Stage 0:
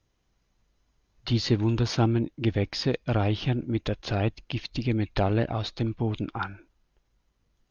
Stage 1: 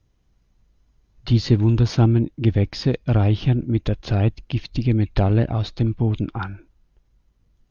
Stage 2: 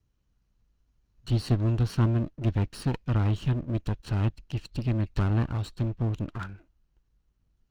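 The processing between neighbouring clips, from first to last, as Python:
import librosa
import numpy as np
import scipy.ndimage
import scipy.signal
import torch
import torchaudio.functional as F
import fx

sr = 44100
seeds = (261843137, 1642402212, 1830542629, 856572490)

y1 = fx.low_shelf(x, sr, hz=280.0, db=10.5)
y2 = fx.lower_of_two(y1, sr, delay_ms=0.7)
y2 = y2 * 10.0 ** (-8.0 / 20.0)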